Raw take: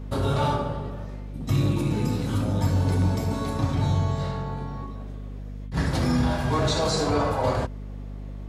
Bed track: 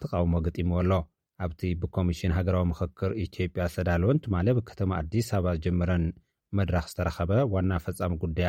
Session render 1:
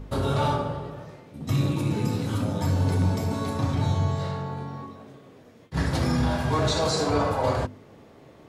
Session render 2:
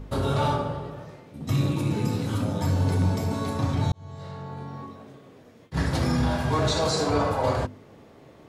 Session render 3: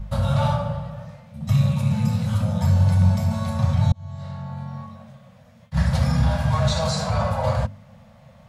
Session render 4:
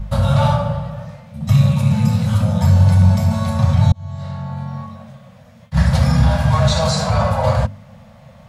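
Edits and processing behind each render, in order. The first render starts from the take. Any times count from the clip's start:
hum removal 50 Hz, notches 7
0:03.92–0:04.88: fade in
elliptic band-stop filter 220–540 Hz, stop band 40 dB; low-shelf EQ 350 Hz +8 dB
level +6 dB; brickwall limiter −3 dBFS, peak gain reduction 1.5 dB

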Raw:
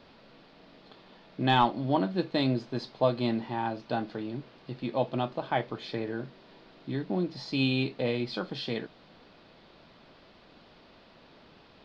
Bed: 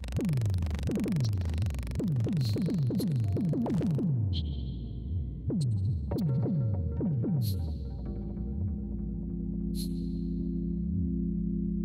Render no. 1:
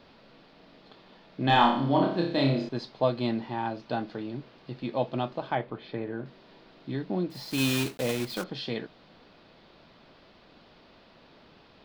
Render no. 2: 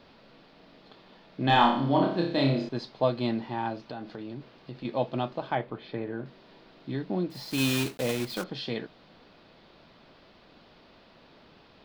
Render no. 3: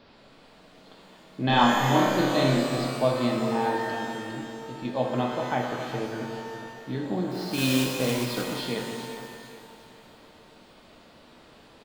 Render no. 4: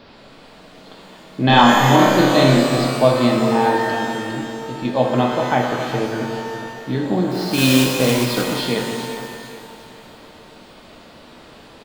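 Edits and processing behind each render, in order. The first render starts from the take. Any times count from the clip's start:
0:01.45–0:02.69: flutter between parallel walls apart 5 metres, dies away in 0.56 s; 0:05.55–0:06.26: high-frequency loss of the air 300 metres; 0:07.30–0:08.44: one scale factor per block 3 bits
0:03.87–0:04.85: downward compressor, threshold −34 dBFS
repeating echo 408 ms, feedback 37%, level −12.5 dB; reverb with rising layers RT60 1.9 s, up +12 semitones, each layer −8 dB, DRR 1.5 dB
level +9.5 dB; brickwall limiter −1 dBFS, peak gain reduction 2.5 dB

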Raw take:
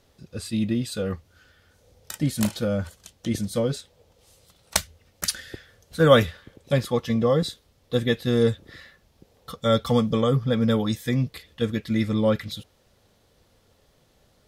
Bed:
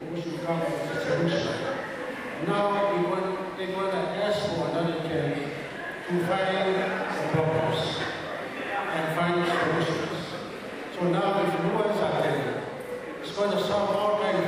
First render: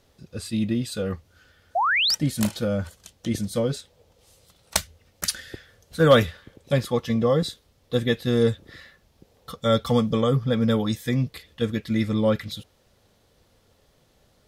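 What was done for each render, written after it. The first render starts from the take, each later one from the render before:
hard clipping −6.5 dBFS, distortion −31 dB
0:01.75–0:02.15: sound drawn into the spectrogram rise 640–6,000 Hz −21 dBFS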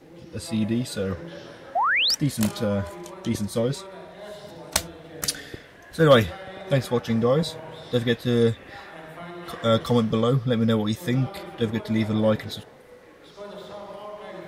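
mix in bed −13.5 dB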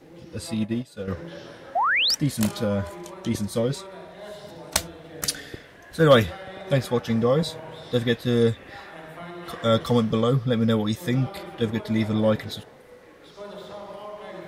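0:00.54–0:01.08: expander for the loud parts 2.5 to 1, over −32 dBFS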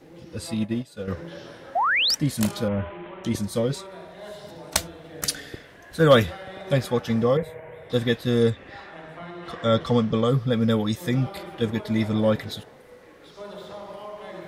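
0:02.68–0:03.24: linear delta modulator 16 kbit/s, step −39.5 dBFS
0:07.37–0:07.90: drawn EQ curve 100 Hz 0 dB, 160 Hz −7 dB, 320 Hz −10 dB, 460 Hz +2 dB, 840 Hz −6 dB, 1,400 Hz −6 dB, 2,100 Hz +4 dB, 4,700 Hz −29 dB, 12,000 Hz −7 dB
0:08.50–0:10.24: high-frequency loss of the air 66 metres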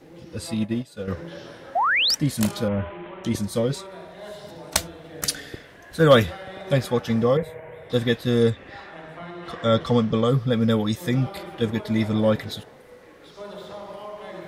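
level +1 dB

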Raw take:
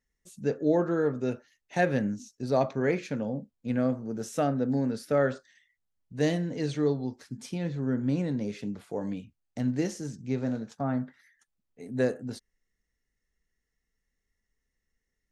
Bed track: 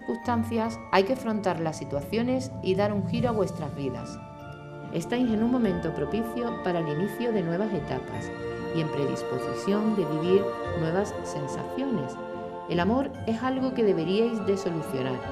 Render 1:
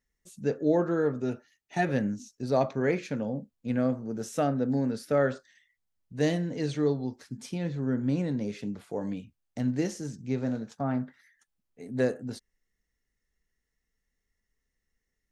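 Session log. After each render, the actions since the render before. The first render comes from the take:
0:01.22–0:01.89: notch comb filter 530 Hz
0:10.91–0:12.00: phase distortion by the signal itself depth 0.12 ms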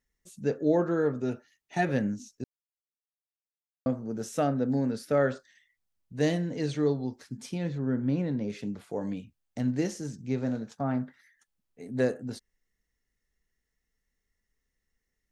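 0:02.44–0:03.86: silence
0:07.78–0:08.50: high-frequency loss of the air 130 metres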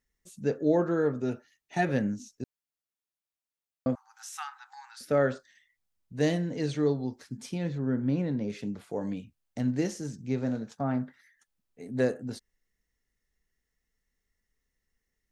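0:03.95–0:05.01: linear-phase brick-wall high-pass 760 Hz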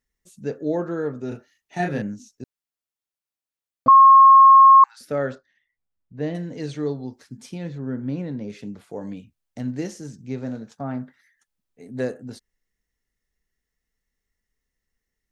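0:01.28–0:02.02: double-tracking delay 34 ms −3 dB
0:03.88–0:04.84: beep over 1,080 Hz −6.5 dBFS
0:05.35–0:06.35: head-to-tape spacing loss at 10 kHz 28 dB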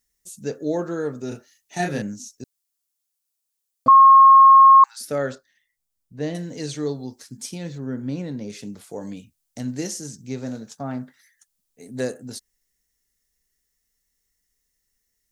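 bass and treble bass −1 dB, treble +14 dB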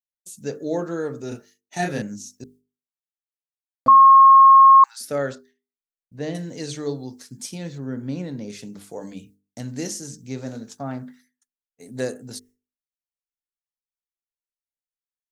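downward expander −47 dBFS
mains-hum notches 50/100/150/200/250/300/350/400/450 Hz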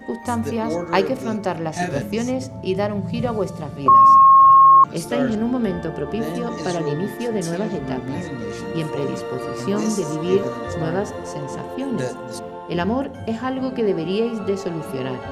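mix in bed track +3 dB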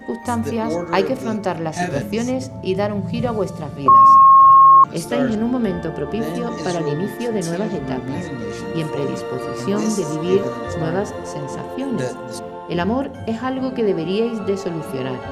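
level +1.5 dB
brickwall limiter −3 dBFS, peak gain reduction 3 dB

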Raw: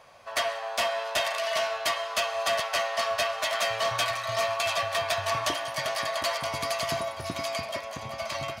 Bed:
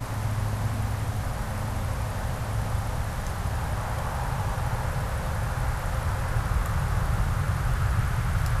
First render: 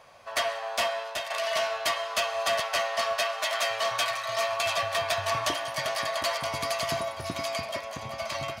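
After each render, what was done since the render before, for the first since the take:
0:00.83–0:01.30: fade out, to −9.5 dB
0:03.13–0:04.53: high-pass filter 370 Hz 6 dB per octave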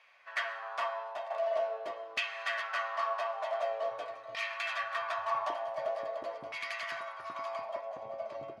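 auto-filter band-pass saw down 0.46 Hz 340–2,400 Hz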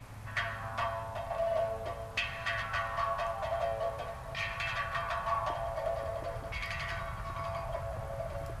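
mix in bed −17 dB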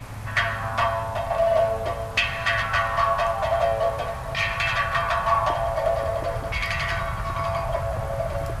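level +11.5 dB

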